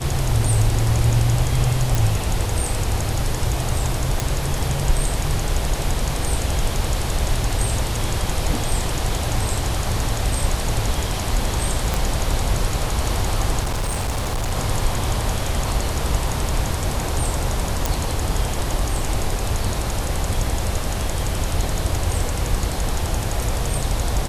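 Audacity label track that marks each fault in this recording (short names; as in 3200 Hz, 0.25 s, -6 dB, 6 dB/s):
1.950000	1.950000	pop
4.200000	4.200000	pop
11.940000	11.940000	pop -6 dBFS
13.620000	14.520000	clipped -19 dBFS
17.860000	17.860000	pop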